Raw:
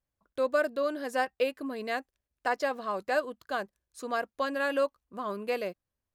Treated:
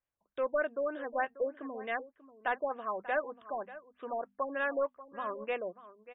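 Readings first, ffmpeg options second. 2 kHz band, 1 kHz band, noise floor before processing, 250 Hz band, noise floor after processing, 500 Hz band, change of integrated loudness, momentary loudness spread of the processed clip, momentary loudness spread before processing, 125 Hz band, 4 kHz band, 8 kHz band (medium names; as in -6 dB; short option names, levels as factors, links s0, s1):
-3.5 dB, -3.0 dB, under -85 dBFS, -7.0 dB, under -85 dBFS, -4.0 dB, -4.0 dB, 10 LU, 9 LU, no reading, -12.5 dB, under -30 dB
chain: -filter_complex "[0:a]bandreject=f=50:t=h:w=6,bandreject=f=100:t=h:w=6,bandreject=f=150:t=h:w=6,bandreject=f=200:t=h:w=6,bandreject=f=250:t=h:w=6,asplit=2[s0][s1];[s1]highpass=f=720:p=1,volume=2.82,asoftclip=type=tanh:threshold=0.178[s2];[s0][s2]amix=inputs=2:normalize=0,lowpass=f=6500:p=1,volume=0.501,asplit=2[s3][s4];[s4]aecho=0:1:588:0.15[s5];[s3][s5]amix=inputs=2:normalize=0,afftfilt=real='re*lt(b*sr/1024,990*pow(3800/990,0.5+0.5*sin(2*PI*3.3*pts/sr)))':imag='im*lt(b*sr/1024,990*pow(3800/990,0.5+0.5*sin(2*PI*3.3*pts/sr)))':win_size=1024:overlap=0.75,volume=0.562"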